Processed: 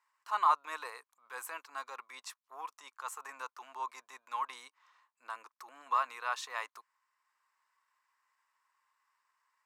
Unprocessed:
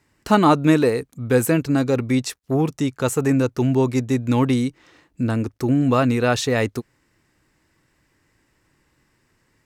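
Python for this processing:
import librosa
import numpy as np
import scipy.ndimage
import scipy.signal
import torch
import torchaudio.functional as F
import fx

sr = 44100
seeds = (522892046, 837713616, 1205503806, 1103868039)

y = fx.transient(x, sr, attack_db=-8, sustain_db=-3)
y = fx.ladder_highpass(y, sr, hz=970.0, resonance_pct=75)
y = y * librosa.db_to_amplitude(-3.5)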